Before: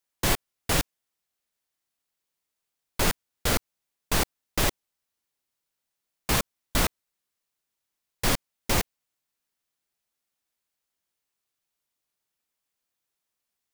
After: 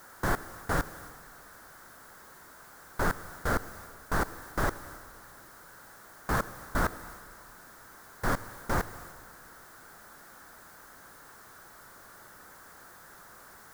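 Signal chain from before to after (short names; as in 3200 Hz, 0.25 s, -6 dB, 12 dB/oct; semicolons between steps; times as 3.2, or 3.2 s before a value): zero-crossing step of -35.5 dBFS; resonant high shelf 2000 Hz -9.5 dB, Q 3; transient shaper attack -1 dB, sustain +4 dB; on a send: reverb RT60 2.1 s, pre-delay 62 ms, DRR 16.5 dB; on the sum: gain -4 dB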